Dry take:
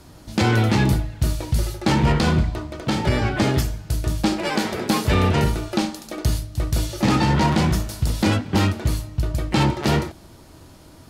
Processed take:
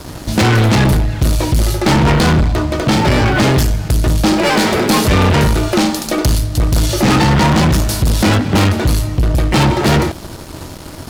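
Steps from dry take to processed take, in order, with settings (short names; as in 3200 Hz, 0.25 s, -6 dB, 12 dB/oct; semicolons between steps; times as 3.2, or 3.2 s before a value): sample leveller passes 3; in parallel at +1 dB: compressor, threshold -22 dBFS, peak gain reduction 9 dB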